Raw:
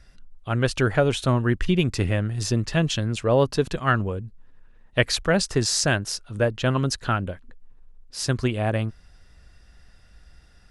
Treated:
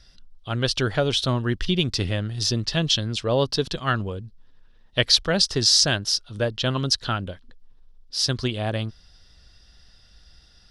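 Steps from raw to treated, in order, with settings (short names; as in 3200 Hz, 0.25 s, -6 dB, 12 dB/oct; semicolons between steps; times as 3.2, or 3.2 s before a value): band shelf 4200 Hz +11.5 dB 1.1 oct; gain -2.5 dB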